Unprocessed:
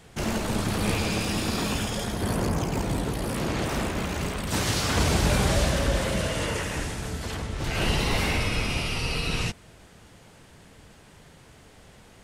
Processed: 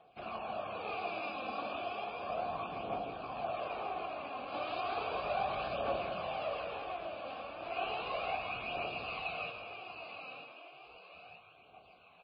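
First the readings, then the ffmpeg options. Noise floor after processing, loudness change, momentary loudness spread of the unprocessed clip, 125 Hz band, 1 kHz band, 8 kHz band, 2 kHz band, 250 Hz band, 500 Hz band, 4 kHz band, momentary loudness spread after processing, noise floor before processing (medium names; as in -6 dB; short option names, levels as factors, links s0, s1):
-61 dBFS, -12.0 dB, 7 LU, -27.5 dB, -3.5 dB, under -40 dB, -11.5 dB, -21.0 dB, -7.5 dB, -15.5 dB, 17 LU, -52 dBFS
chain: -filter_complex "[0:a]asplit=3[s0][s1][s2];[s0]bandpass=f=730:t=q:w=8,volume=1[s3];[s1]bandpass=f=1090:t=q:w=8,volume=0.501[s4];[s2]bandpass=f=2440:t=q:w=8,volume=0.355[s5];[s3][s4][s5]amix=inputs=3:normalize=0,asplit=2[s6][s7];[s7]aecho=0:1:937|1874|2811|3748|4685:0.447|0.179|0.0715|0.0286|0.0114[s8];[s6][s8]amix=inputs=2:normalize=0,aphaser=in_gain=1:out_gain=1:delay=3.9:decay=0.49:speed=0.34:type=triangular,asplit=2[s9][s10];[s10]aecho=0:1:163|868:0.398|0.119[s11];[s9][s11]amix=inputs=2:normalize=0" -ar 11025 -c:a libmp3lame -b:a 16k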